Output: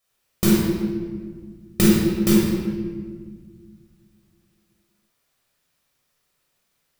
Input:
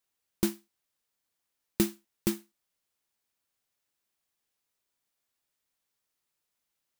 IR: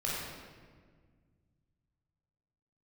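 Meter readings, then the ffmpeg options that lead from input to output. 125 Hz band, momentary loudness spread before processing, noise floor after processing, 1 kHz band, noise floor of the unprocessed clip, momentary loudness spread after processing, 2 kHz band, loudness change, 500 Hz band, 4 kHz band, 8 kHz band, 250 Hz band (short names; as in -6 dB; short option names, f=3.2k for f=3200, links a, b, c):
+18.0 dB, 11 LU, -72 dBFS, +14.0 dB, -84 dBFS, 19 LU, +14.0 dB, +12.0 dB, +14.0 dB, +12.5 dB, +11.0 dB, +15.5 dB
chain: -filter_complex "[1:a]atrim=start_sample=2205[a];[0:a][a]afir=irnorm=-1:irlink=0,volume=8dB"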